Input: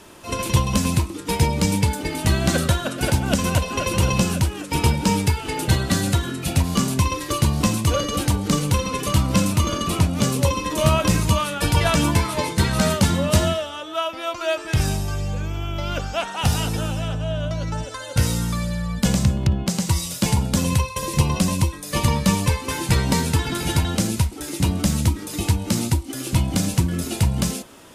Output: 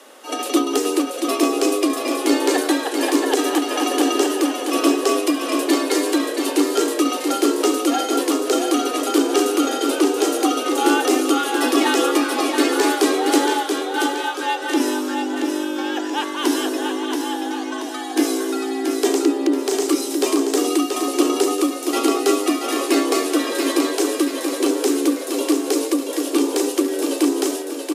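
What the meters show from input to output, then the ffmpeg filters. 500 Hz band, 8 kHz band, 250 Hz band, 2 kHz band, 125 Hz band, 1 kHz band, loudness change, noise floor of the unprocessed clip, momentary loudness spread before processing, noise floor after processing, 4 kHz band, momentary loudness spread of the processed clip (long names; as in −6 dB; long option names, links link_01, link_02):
+7.5 dB, +1.5 dB, +5.0 dB, +2.5 dB, below −40 dB, +3.5 dB, +2.0 dB, −34 dBFS, 6 LU, −28 dBFS, +2.0 dB, 5 LU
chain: -af "aecho=1:1:680|1360|2040|2720|3400:0.531|0.234|0.103|0.0452|0.0199,afreqshift=210"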